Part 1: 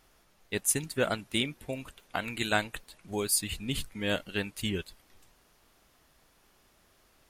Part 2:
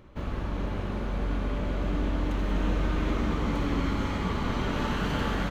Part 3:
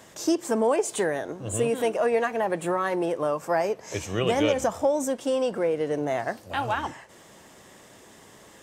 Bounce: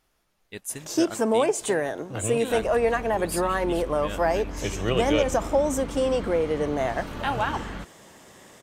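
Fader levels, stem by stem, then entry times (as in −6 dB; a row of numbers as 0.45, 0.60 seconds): −6.5, −7.0, +1.0 decibels; 0.00, 2.35, 0.70 seconds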